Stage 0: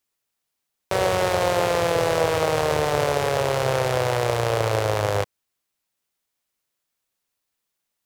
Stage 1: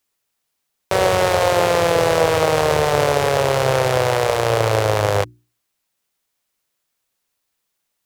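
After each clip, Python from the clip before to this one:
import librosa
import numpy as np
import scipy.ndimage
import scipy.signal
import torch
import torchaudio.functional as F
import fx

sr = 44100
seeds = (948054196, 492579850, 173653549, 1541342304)

y = fx.hum_notches(x, sr, base_hz=60, count=6)
y = y * 10.0 ** (5.0 / 20.0)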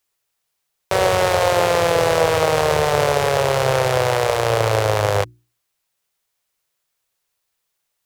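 y = fx.peak_eq(x, sr, hz=250.0, db=-11.0, octaves=0.46)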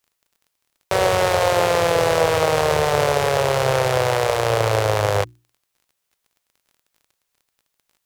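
y = fx.dmg_crackle(x, sr, seeds[0], per_s=23.0, level_db=-42.0)
y = y * 10.0 ** (-1.0 / 20.0)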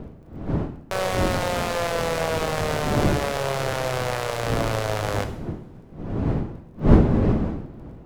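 y = np.where(x < 0.0, 10.0 ** (-7.0 / 20.0) * x, x)
y = fx.dmg_wind(y, sr, seeds[1], corner_hz=260.0, level_db=-20.0)
y = fx.rev_double_slope(y, sr, seeds[2], early_s=0.65, late_s=2.1, knee_db=-20, drr_db=7.5)
y = y * 10.0 ** (-6.0 / 20.0)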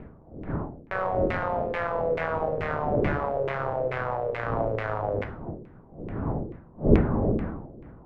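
y = fx.filter_lfo_lowpass(x, sr, shape='saw_down', hz=2.3, low_hz=400.0, high_hz=2300.0, q=3.0)
y = y * 10.0 ** (-6.5 / 20.0)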